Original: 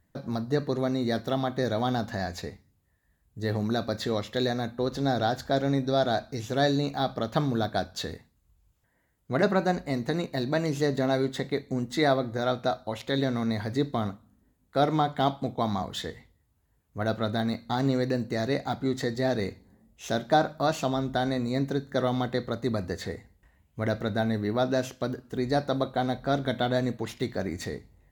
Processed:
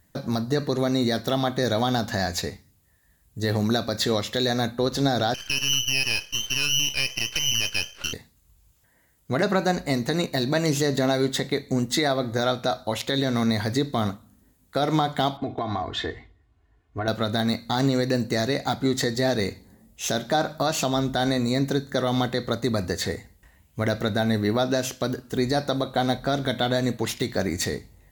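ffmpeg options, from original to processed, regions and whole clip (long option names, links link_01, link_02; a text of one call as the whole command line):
ffmpeg -i in.wav -filter_complex "[0:a]asettb=1/sr,asplit=3[link_01][link_02][link_03];[link_01]atrim=end=5.344[link_04];[link_02]atrim=start=5.34:end=8.13,asetpts=PTS-STARTPTS,afade=type=in:duration=0.004:curve=qsin,afade=type=out:start_time=2.786:duration=0.004:curve=qsin,lowpass=frequency=2700:width_type=q:width=0.5098,lowpass=frequency=2700:width_type=q:width=0.6013,lowpass=frequency=2700:width_type=q:width=0.9,lowpass=frequency=2700:width_type=q:width=2.563,afreqshift=-3200,aeval=exprs='max(val(0),0)':channel_layout=same[link_05];[link_03]atrim=start=8.126[link_06];[link_04][link_05]acrossfade=duration=0.004:curve1=hsin:curve2=qsin[link_07];[link_07][link_06]acrossfade=duration=0.004:curve1=qsin:curve2=hsin,asettb=1/sr,asplit=3[link_08][link_09][link_10];[link_08]atrim=end=15.374[link_11];[link_09]atrim=start=15.37:end=17.08,asetpts=PTS-STARTPTS,afade=type=in:duration=0.004:curve=qsin,afade=type=out:start_time=1.706:duration=0.004:curve=qsin,lowpass=2400,aecho=1:1:2.8:0.73,atrim=end_sample=75411,acompressor=threshold=-29dB:ratio=10:attack=3.2:release=140:knee=1:detection=peak[link_12];[link_10]atrim=start=17.076[link_13];[link_11][link_12]acrossfade=duration=0.004:curve1=hsin:curve2=qsin[link_14];[link_14][link_13]acrossfade=duration=0.004:curve1=qsin:curve2=hsin,highshelf=frequency=3100:gain=9.5,alimiter=limit=-17dB:level=0:latency=1:release=133,volume=5.5dB" out.wav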